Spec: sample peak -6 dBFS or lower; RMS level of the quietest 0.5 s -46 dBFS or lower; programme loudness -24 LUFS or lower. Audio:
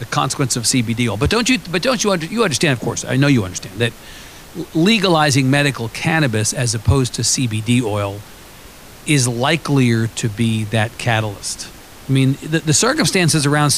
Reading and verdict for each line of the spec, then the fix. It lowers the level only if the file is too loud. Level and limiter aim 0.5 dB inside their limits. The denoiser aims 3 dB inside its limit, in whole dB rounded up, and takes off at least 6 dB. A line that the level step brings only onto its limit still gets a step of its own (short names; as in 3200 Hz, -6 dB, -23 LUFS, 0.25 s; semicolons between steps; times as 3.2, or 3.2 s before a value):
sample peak -3.0 dBFS: fail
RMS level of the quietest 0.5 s -39 dBFS: fail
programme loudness -16.5 LUFS: fail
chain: gain -8 dB